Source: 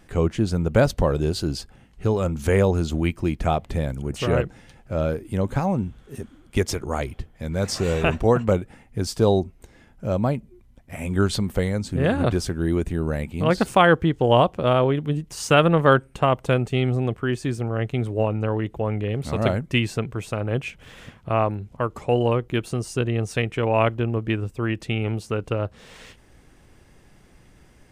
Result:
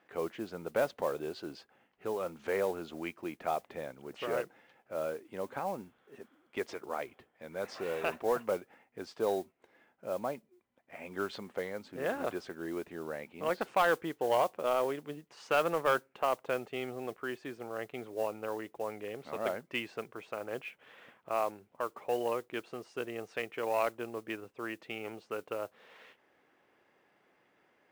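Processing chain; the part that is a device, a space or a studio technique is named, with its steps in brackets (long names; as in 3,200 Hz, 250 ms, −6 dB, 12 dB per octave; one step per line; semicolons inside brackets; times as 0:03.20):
carbon microphone (band-pass filter 440–2,600 Hz; soft clipping −10 dBFS, distortion −18 dB; noise that follows the level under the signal 22 dB)
level −8 dB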